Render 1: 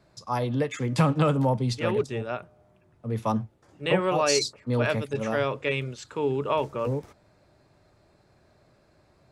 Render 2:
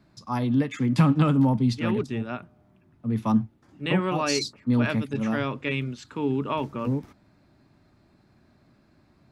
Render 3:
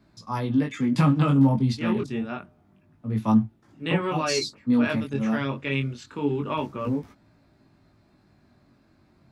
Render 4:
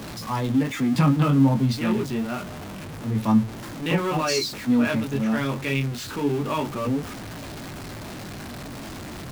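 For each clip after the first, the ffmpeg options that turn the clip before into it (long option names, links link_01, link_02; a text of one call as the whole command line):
ffmpeg -i in.wav -af "equalizer=frequency=250:width_type=o:width=1:gain=10,equalizer=frequency=500:width_type=o:width=1:gain=-9,equalizer=frequency=8000:width_type=o:width=1:gain=-6" out.wav
ffmpeg -i in.wav -af "flanger=delay=18:depth=4.3:speed=0.27,volume=3dB" out.wav
ffmpeg -i in.wav -af "aeval=exprs='val(0)+0.5*0.0299*sgn(val(0))':channel_layout=same" out.wav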